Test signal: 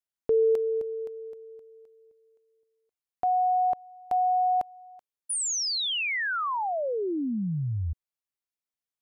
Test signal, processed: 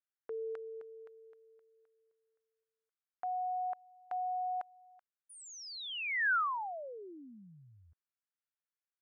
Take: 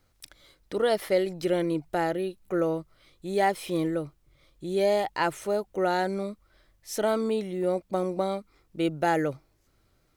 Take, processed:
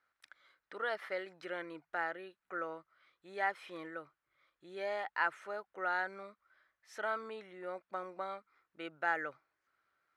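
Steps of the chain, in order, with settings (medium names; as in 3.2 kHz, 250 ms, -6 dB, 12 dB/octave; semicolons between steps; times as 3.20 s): band-pass filter 1.5 kHz, Q 2.5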